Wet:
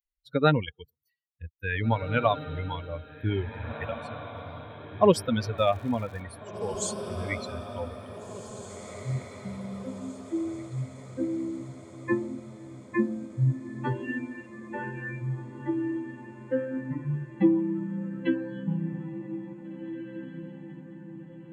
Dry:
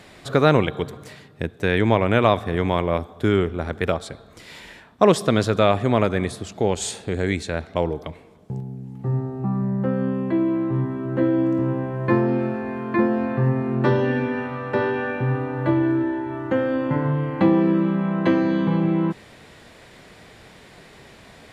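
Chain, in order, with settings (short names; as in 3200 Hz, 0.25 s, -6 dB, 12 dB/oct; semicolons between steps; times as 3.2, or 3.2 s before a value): per-bin expansion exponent 3; 5.57–6.2 crackle 290/s -43 dBFS; diffused feedback echo 1.888 s, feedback 50%, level -11 dB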